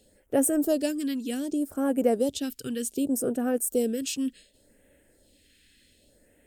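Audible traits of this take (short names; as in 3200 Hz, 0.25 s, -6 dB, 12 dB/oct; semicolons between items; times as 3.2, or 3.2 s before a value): a quantiser's noise floor 12-bit, dither none; phasing stages 2, 0.66 Hz, lowest notch 620–4300 Hz; MP3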